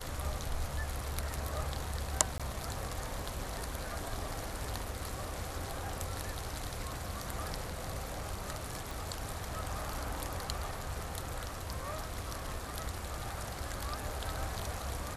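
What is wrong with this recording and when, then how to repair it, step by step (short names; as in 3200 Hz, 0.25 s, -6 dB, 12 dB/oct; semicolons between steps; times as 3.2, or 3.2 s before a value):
2.38–2.4 gap 16 ms
8.91 pop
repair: de-click; interpolate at 2.38, 16 ms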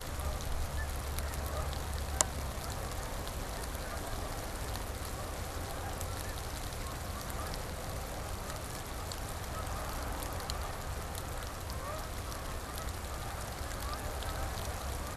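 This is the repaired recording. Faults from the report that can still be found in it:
none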